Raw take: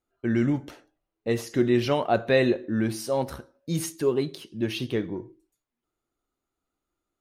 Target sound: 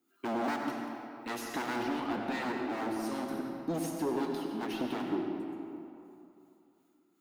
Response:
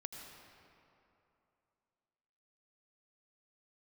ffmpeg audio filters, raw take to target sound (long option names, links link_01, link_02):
-filter_complex "[0:a]lowshelf=frequency=400:width_type=q:width=3:gain=11,volume=13.5dB,asoftclip=hard,volume=-13.5dB,highpass=frequency=100:width=0.5412,highpass=frequency=100:width=1.3066,aemphasis=mode=production:type=riaa,acompressor=threshold=-32dB:ratio=4,asetnsamples=nb_out_samples=441:pad=0,asendcmd='1.83 lowpass f 1200',asplit=2[link_01][link_02];[link_02]highpass=frequency=720:poles=1,volume=22dB,asoftclip=type=tanh:threshold=-15dB[link_03];[link_01][link_03]amix=inputs=2:normalize=0,lowpass=frequency=2300:poles=1,volume=-6dB,acrossover=split=900[link_04][link_05];[link_04]aeval=exprs='val(0)*(1-0.7/2+0.7/2*cos(2*PI*2.7*n/s))':channel_layout=same[link_06];[link_05]aeval=exprs='val(0)*(1-0.7/2-0.7/2*cos(2*PI*2.7*n/s))':channel_layout=same[link_07];[link_06][link_07]amix=inputs=2:normalize=0[link_08];[1:a]atrim=start_sample=2205[link_09];[link_08][link_09]afir=irnorm=-1:irlink=0"